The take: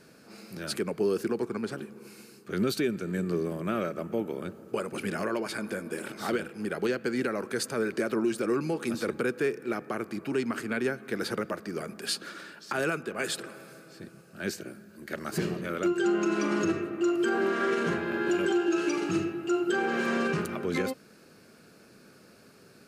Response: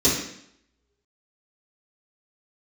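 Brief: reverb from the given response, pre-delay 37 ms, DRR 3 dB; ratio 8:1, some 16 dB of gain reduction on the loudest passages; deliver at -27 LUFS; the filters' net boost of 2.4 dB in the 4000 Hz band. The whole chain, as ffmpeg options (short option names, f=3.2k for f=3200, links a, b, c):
-filter_complex "[0:a]equalizer=f=4k:t=o:g=3,acompressor=threshold=-40dB:ratio=8,asplit=2[a][b];[1:a]atrim=start_sample=2205,adelay=37[c];[b][c]afir=irnorm=-1:irlink=0,volume=-19.5dB[d];[a][d]amix=inputs=2:normalize=0,volume=11.5dB"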